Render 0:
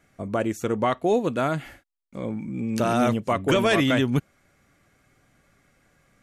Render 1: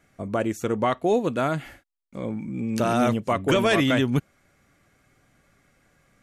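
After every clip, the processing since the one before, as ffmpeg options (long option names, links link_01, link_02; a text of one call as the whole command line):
ffmpeg -i in.wav -af anull out.wav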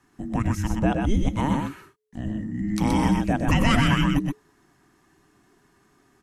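ffmpeg -i in.wav -af "aecho=1:1:100|124|127:0.178|0.631|0.141,afreqshift=-430" out.wav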